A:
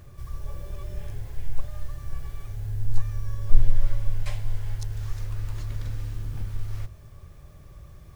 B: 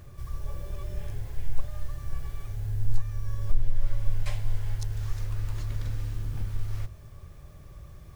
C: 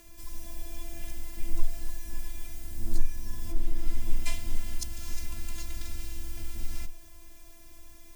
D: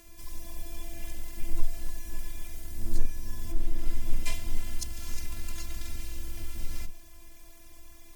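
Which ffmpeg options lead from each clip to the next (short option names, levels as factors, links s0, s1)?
-af "alimiter=limit=0.282:level=0:latency=1:release=450"
-af "aexciter=amount=1.7:drive=7.8:freq=2100,afftfilt=real='hypot(re,im)*cos(PI*b)':imag='0':win_size=512:overlap=0.75,afreqshift=-13,volume=1.12"
-ar 44100 -c:a aac -b:a 96k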